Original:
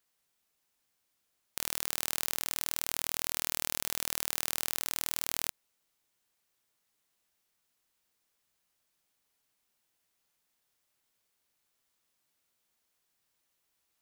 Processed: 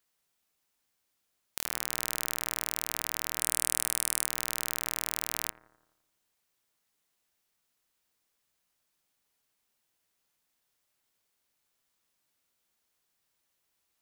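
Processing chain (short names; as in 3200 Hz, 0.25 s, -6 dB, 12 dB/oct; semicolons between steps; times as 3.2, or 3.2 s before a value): 3.41–4.27 bell 9200 Hz +12.5 dB 0.43 oct; analogue delay 85 ms, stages 1024, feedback 58%, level -14 dB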